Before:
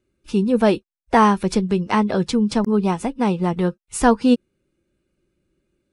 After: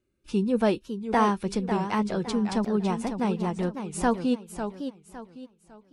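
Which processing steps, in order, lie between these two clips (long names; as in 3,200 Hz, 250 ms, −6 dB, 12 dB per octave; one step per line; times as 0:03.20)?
speech leveller 2 s
feedback echo with a swinging delay time 555 ms, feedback 34%, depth 191 cents, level −8.5 dB
level −8.5 dB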